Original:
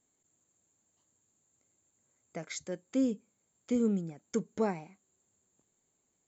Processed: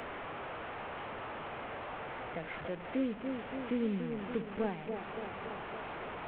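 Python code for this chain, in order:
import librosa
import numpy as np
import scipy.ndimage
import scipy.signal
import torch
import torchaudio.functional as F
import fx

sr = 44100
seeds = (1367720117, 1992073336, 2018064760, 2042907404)

p1 = fx.delta_mod(x, sr, bps=16000, step_db=-38.5)
p2 = fx.peak_eq(p1, sr, hz=240.0, db=-3.0, octaves=2.6)
p3 = p2 + fx.echo_wet_bandpass(p2, sr, ms=285, feedback_pct=58, hz=450.0, wet_db=-6.5, dry=0)
y = fx.band_squash(p3, sr, depth_pct=40)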